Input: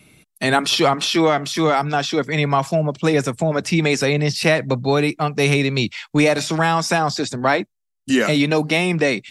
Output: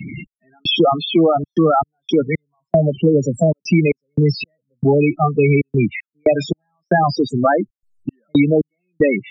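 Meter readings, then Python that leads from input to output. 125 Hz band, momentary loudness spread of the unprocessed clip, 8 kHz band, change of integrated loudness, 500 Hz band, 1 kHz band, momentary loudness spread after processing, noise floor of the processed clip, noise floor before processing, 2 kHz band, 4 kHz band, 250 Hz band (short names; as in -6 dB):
+2.5 dB, 4 LU, under -10 dB, +1.0 dB, +2.5 dB, 0.0 dB, 12 LU, under -85 dBFS, -75 dBFS, -5.5 dB, -3.5 dB, +2.5 dB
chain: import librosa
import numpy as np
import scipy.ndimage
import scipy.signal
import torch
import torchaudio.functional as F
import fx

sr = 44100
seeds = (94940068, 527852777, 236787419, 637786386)

y = fx.spec_topn(x, sr, count=8)
y = fx.step_gate(y, sr, bpm=115, pattern='xx...xxxxxx.xx..', floor_db=-60.0, edge_ms=4.5)
y = fx.band_squash(y, sr, depth_pct=70)
y = y * librosa.db_to_amplitude(5.0)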